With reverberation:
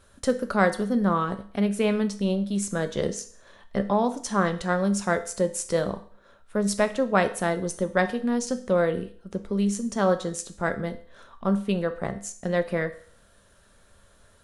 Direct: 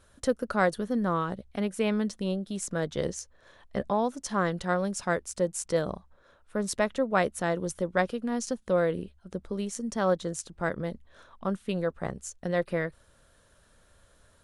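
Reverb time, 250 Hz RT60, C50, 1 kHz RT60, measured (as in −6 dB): 0.50 s, 0.50 s, 14.0 dB, 0.50 s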